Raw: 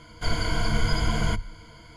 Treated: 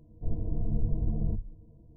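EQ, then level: Gaussian low-pass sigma 18 samples; -3.5 dB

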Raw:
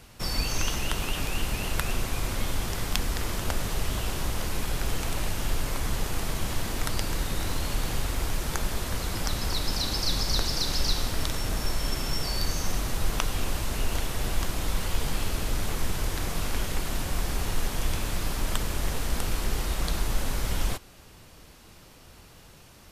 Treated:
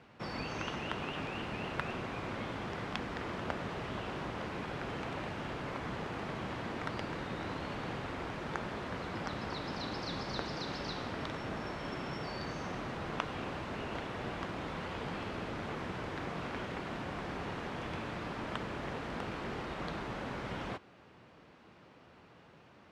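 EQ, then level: high-pass 150 Hz 12 dB/octave; low-pass 2.2 kHz 12 dB/octave; -3.0 dB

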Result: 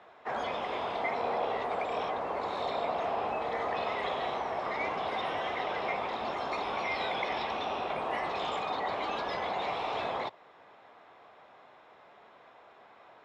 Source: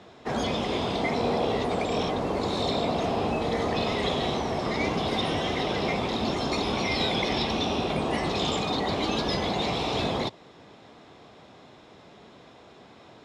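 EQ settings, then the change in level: three-band isolator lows -19 dB, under 560 Hz, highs -18 dB, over 2.4 kHz; 0.0 dB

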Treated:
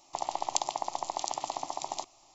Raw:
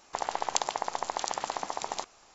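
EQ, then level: static phaser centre 310 Hz, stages 8; 0.0 dB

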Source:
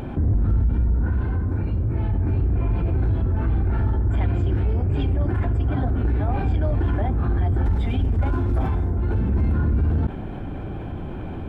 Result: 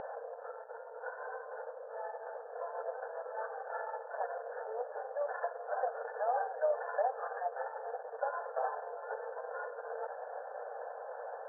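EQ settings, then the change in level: brick-wall FIR band-pass 450–1800 Hz; distance through air 250 m; peaking EQ 1.2 kHz -7.5 dB 1.4 oct; +4.0 dB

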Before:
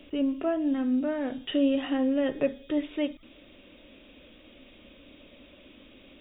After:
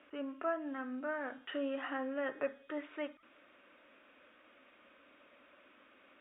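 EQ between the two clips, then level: band-pass filter 1.4 kHz, Q 2.4; distance through air 340 m; +6.0 dB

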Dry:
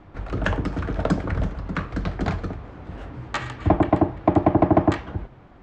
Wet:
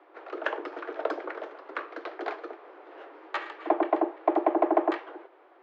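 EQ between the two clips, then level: steep high-pass 330 Hz 72 dB/octave; distance through air 220 m; -2.5 dB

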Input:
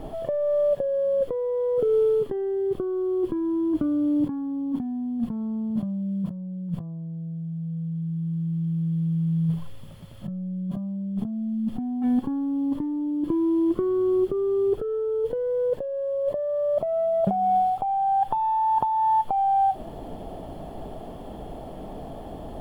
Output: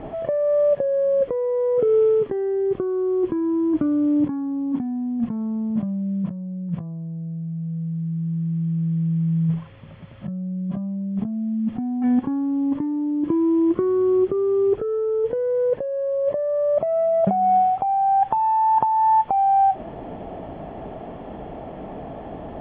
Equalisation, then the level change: high-pass 83 Hz 6 dB/octave; resonant low-pass 2.3 kHz, resonance Q 2.1; distance through air 210 m; +4.0 dB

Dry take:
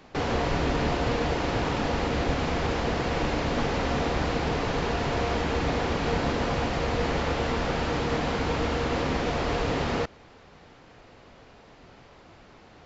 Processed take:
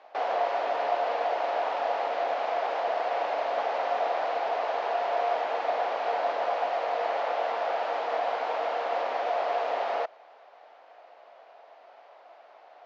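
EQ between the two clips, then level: ladder high-pass 600 Hz, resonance 65%; distance through air 180 m; +7.5 dB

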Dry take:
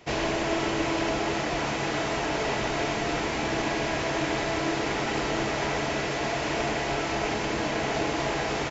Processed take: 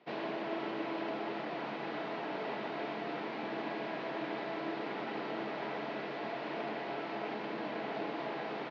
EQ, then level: elliptic band-pass 180–4200 Hz, stop band 40 dB; treble shelf 2.8 kHz -8.5 dB; -9.0 dB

